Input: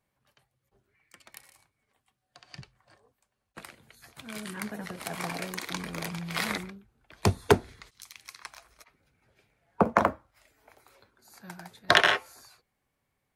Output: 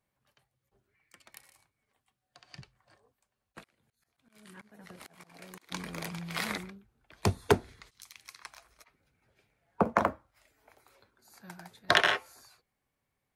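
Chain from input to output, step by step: 3.60–5.72 s: slow attack 650 ms; trim -3.5 dB

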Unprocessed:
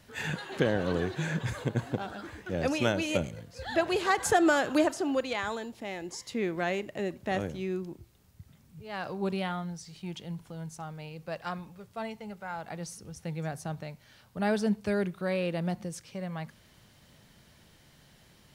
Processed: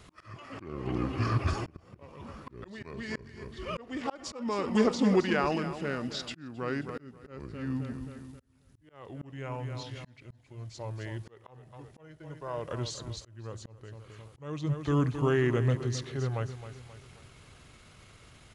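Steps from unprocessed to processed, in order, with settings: pitch shift -6 st; feedback delay 266 ms, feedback 45%, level -12 dB; slow attack 790 ms; trim +4.5 dB

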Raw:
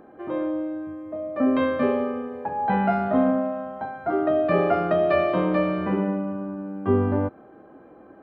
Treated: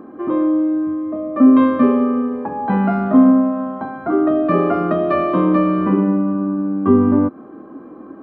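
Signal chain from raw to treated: in parallel at 0 dB: compression, threshold -29 dBFS, peak gain reduction 13 dB; on the sum: small resonant body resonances 260/1100 Hz, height 14 dB, ringing for 20 ms; trim -4 dB

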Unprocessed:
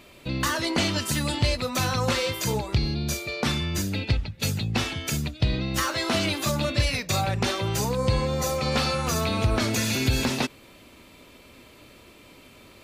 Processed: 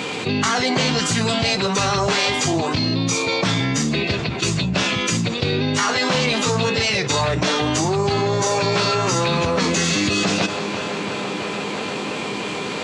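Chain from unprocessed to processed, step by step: elliptic band-pass 160–7400 Hz, stop band 50 dB; tape echo 334 ms, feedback 90%, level -23 dB, low-pass 4.8 kHz; formant-preserving pitch shift -4.5 st; level flattener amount 70%; trim +5 dB

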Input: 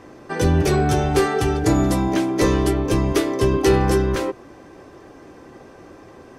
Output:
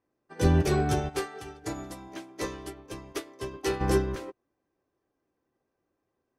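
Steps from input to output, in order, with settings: 1.09–3.81 s: bass shelf 410 Hz -9 dB; upward expansion 2.5:1, over -37 dBFS; trim -3 dB

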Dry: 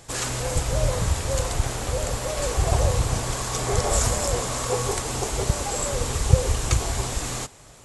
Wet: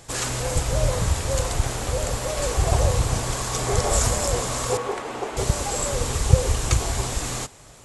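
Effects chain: 4.77–5.37 s: three-band isolator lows -20 dB, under 210 Hz, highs -17 dB, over 3 kHz; trim +1 dB

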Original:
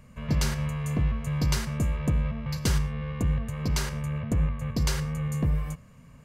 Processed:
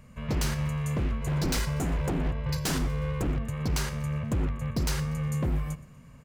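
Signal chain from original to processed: 1.21–3.27 s: comb 2 ms, depth 96%; wavefolder -22 dBFS; feedback delay 121 ms, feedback 51%, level -21 dB

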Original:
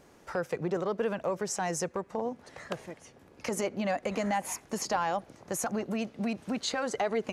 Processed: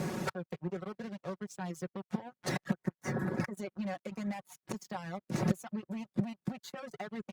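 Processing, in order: 0.94–1.39 s: CVSD coder 32 kbps; band-stop 3.1 kHz, Q 8; inverted gate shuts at -34 dBFS, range -31 dB; waveshaping leveller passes 5; high-pass 110 Hz 24 dB/octave; tone controls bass +12 dB, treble -2 dB; comb 5.4 ms, depth 62%; reverb removal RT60 0.52 s; 2.74–3.55 s: resonant high shelf 2.2 kHz -6.5 dB, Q 3; Opus 64 kbps 48 kHz

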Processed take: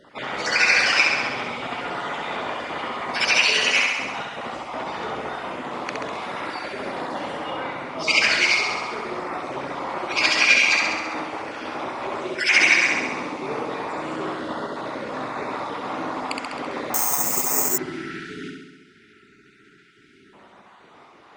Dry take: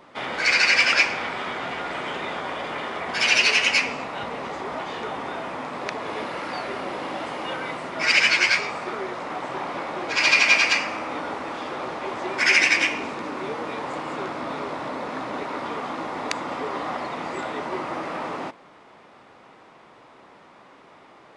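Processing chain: random holes in the spectrogram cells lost 31%; 7.37–7.98 s: low-pass 2.9 kHz 6 dB/octave; 17.66–20.33 s: spectral selection erased 440–1300 Hz; flutter echo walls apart 11.4 m, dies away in 1.1 s; 16.94–17.78 s: careless resampling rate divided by 6×, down filtered, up zero stuff

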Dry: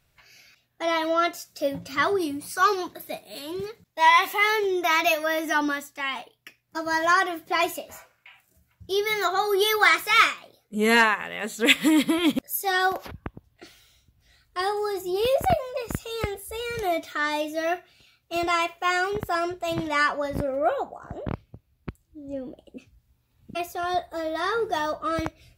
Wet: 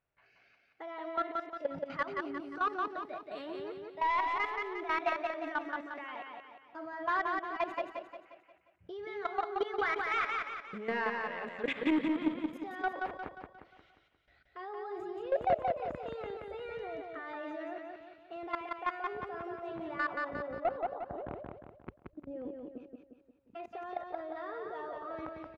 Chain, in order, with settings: tone controls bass -12 dB, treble -15 dB; level held to a coarse grid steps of 22 dB; peak limiter -21 dBFS, peak gain reduction 11 dB; saturation -25 dBFS, distortion -15 dB; tape spacing loss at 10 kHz 25 dB; on a send: feedback delay 177 ms, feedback 46%, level -3.5 dB; on the sum: trim +3.5 dB

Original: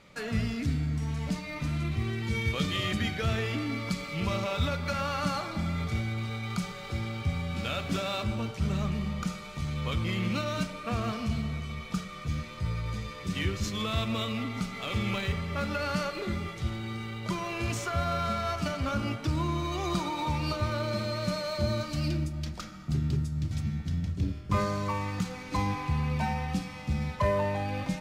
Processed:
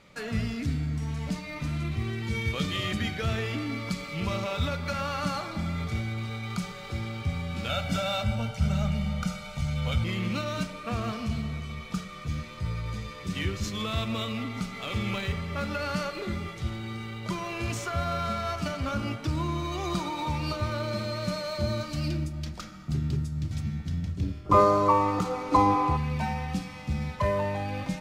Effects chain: 7.69–10.04 s: comb 1.4 ms, depth 79%; 24.46–25.96 s: time-frequency box 270–1400 Hz +12 dB

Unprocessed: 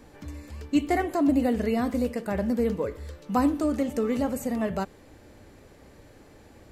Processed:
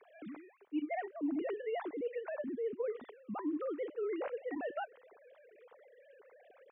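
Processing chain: formants replaced by sine waves; reverse; compression 4:1, threshold -37 dBFS, peak gain reduction 20 dB; reverse

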